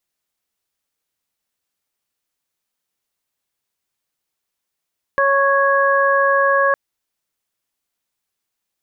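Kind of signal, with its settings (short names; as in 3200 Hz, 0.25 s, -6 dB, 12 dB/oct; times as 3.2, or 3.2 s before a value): steady additive tone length 1.56 s, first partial 553 Hz, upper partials 0/-1 dB, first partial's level -16.5 dB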